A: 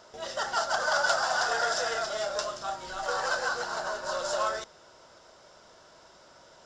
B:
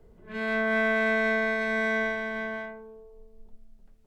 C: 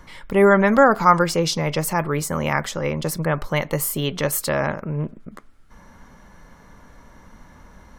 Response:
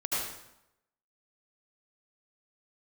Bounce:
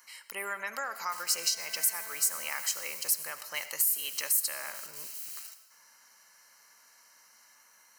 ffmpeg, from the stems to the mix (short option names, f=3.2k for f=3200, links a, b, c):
-filter_complex "[0:a]highpass=720,alimiter=limit=-21dB:level=0:latency=1:release=352,aeval=exprs='(mod(47.3*val(0)+1,2)-1)/47.3':c=same,adelay=900,volume=-5.5dB,asplit=2[a][b];[b]volume=-15dB[c];[1:a]volume=-4dB,afade=t=in:st=1.23:d=0.49:silence=0.237137[d];[2:a]highpass=120,lowshelf=f=450:g=-10.5,acompressor=threshold=-22dB:ratio=2.5,volume=3dB,asplit=2[e][f];[f]volume=-19dB[g];[3:a]atrim=start_sample=2205[h];[c][g]amix=inputs=2:normalize=0[i];[i][h]afir=irnorm=-1:irlink=0[j];[a][d][e][j]amix=inputs=4:normalize=0,asuperstop=centerf=3500:order=8:qfactor=5.9,aderivative,alimiter=limit=-14dB:level=0:latency=1:release=396"